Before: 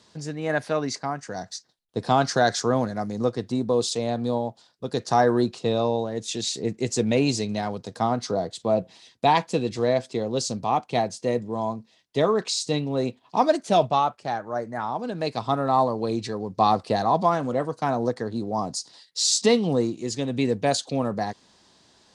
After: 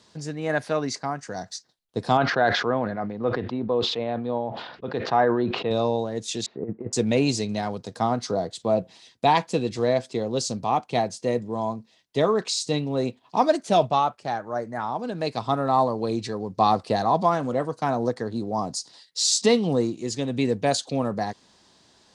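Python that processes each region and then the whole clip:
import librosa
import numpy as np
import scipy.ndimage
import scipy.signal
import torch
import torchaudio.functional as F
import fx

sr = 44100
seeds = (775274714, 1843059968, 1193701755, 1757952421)

y = fx.chain(x, sr, fx.lowpass(hz=2900.0, slope=24),
    fx.low_shelf(hz=270.0, db=-7.5),
    fx.sustainer(db_per_s=52.0), at=(2.17, 5.71))
y = fx.chain(y, sr, fx.lowpass(hz=1400.0, slope=24),
    fx.low_shelf(hz=93.0, db=-8.0),
    fx.over_compress(threshold_db=-29.0, ratio=-0.5), at=(6.46, 6.93))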